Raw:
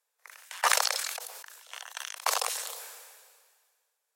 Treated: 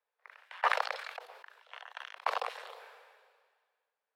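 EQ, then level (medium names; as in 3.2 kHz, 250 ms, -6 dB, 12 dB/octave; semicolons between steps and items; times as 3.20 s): high-pass 220 Hz 24 dB/octave; distance through air 410 m; 0.0 dB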